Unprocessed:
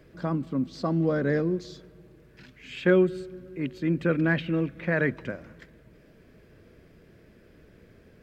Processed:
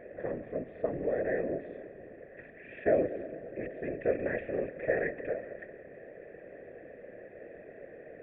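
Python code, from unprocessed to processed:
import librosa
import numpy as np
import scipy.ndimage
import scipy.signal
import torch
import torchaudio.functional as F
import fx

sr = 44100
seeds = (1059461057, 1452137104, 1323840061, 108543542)

y = fx.bin_compress(x, sr, power=0.6)
y = fx.formant_cascade(y, sr, vowel='e')
y = fx.whisperise(y, sr, seeds[0])
y = F.gain(torch.from_numpy(y), 1.0).numpy()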